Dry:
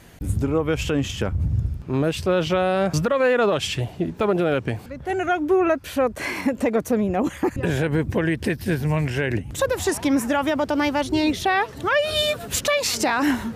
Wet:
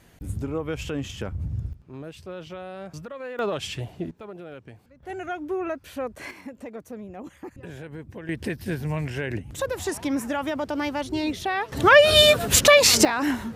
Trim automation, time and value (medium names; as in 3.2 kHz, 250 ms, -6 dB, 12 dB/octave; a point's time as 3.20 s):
-7.5 dB
from 1.73 s -17 dB
from 3.39 s -7 dB
from 4.11 s -19.5 dB
from 5.03 s -10 dB
from 6.31 s -17 dB
from 8.29 s -6 dB
from 11.72 s +7 dB
from 13.05 s -4 dB